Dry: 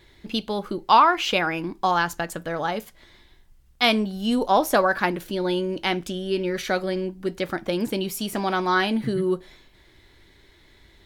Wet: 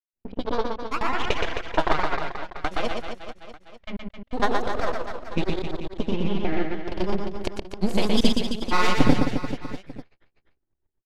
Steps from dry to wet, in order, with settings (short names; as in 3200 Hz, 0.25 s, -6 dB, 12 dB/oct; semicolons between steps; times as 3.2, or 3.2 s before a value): gate -46 dBFS, range -37 dB; half-wave rectifier; compressor 16:1, threshold -28 dBFS, peak gain reduction 17 dB; transient shaper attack +6 dB, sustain -2 dB; AGC gain up to 16 dB; flange 1.1 Hz, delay 7.8 ms, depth 8.6 ms, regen +45%; low-pass opened by the level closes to 770 Hz, open at -18 dBFS; step gate ".xxx.x..." 158 bpm -60 dB; grains, pitch spread up and down by 3 st; reverse bouncing-ball echo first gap 0.12 s, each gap 1.2×, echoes 5; gain +4.5 dB